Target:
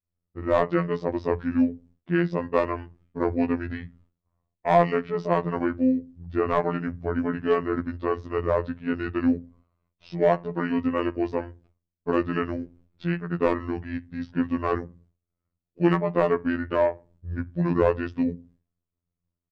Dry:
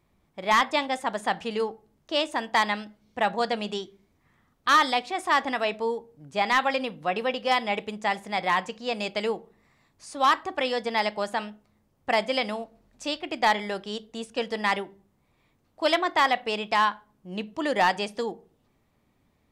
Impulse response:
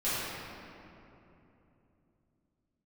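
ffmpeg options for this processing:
-af "bandreject=f=50:t=h:w=6,bandreject=f=100:t=h:w=6,bandreject=f=150:t=h:w=6,bandreject=f=200:t=h:w=6,bandreject=f=250:t=h:w=6,bandreject=f=300:t=h:w=6,bandreject=f=350:t=h:w=6,agate=range=0.0224:threshold=0.002:ratio=3:detection=peak,highshelf=f=2300:g=-6.5,asetrate=24750,aresample=44100,atempo=1.7818,bass=f=250:g=7,treble=f=4000:g=-4,afftfilt=real='hypot(re,im)*cos(PI*b)':imag='0':win_size=2048:overlap=0.75,volume=1.68"

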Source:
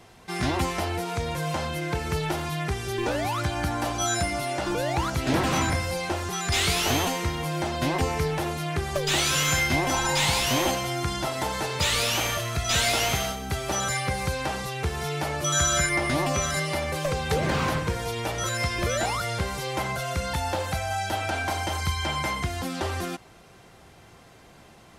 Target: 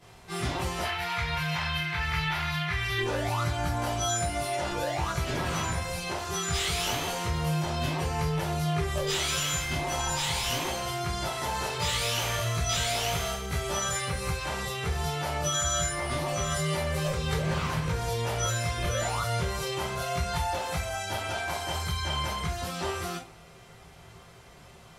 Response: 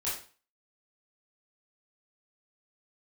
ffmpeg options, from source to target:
-filter_complex "[0:a]asettb=1/sr,asplit=3[s0][s1][s2];[s0]atrim=end=0.834[s3];[s1]atrim=start=0.83:end=2.98,asetpts=PTS-STARTPTS,afade=t=in:d=0.004:c=qsin,afade=t=out:st=2.146:d=0.004:c=qsin,equalizer=f=250:t=o:w=1:g=-9,equalizer=f=500:t=o:w=1:g=-10,equalizer=f=1000:t=o:w=1:g=3,equalizer=f=2000:t=o:w=1:g=12,equalizer=f=4000:t=o:w=1:g=5,equalizer=f=8000:t=o:w=1:g=-9[s4];[s2]atrim=start=2.976[s5];[s3][s4]acrossfade=d=0.004:c1=hsin:c2=qsin[s6];[s6][s5]acrossfade=d=0.004:c1=qsin:c2=hsin,acompressor=threshold=0.0501:ratio=6[s7];[1:a]atrim=start_sample=2205,asetrate=57330,aresample=44100[s8];[s7][s8]afir=irnorm=-1:irlink=0,volume=0.794"

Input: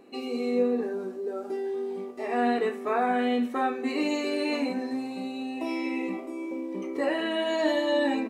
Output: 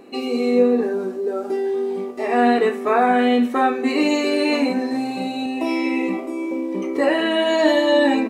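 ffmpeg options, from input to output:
-filter_complex "[0:a]asettb=1/sr,asplit=3[s0][s1][s2];[s0]atrim=end=4.894[s3];[s1]atrim=start=4.89:end=5.46,asetpts=PTS-STARTPTS,afade=t=in:d=0.004:c=qsin,afade=t=out:st=0.566:d=0.004:c=qsin,asplit=2[s4][s5];[s5]adelay=37,volume=0.708[s6];[s4][s6]amix=inputs=2:normalize=0,atrim=end_sample=25137[s7];[s2]atrim=start=5.456[s8];[s3][s7]acrossfade=d=0.004:c1=hsin:c2=qsin[s9];[s9][s8]acrossfade=d=0.004:c1=qsin:c2=hsin,volume=2.82"

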